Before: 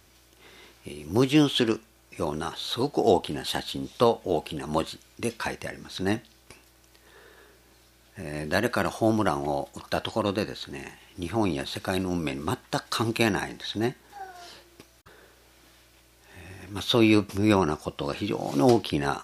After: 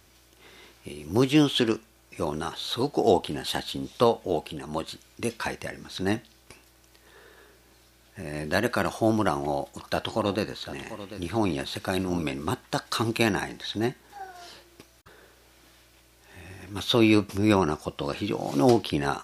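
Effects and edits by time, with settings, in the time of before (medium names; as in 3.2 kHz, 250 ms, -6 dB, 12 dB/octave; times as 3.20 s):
4.20–4.88 s: fade out, to -6 dB
9.34–12.23 s: delay 743 ms -13 dB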